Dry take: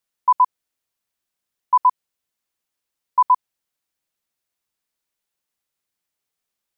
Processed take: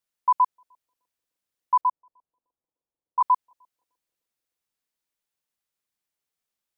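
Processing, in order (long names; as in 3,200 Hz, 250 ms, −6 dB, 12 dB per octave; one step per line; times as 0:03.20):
0:01.81–0:03.21: low-pass filter 1,000 Hz 24 dB per octave
bucket-brigade delay 304 ms, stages 1,024, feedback 68%, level −19 dB
level −4.5 dB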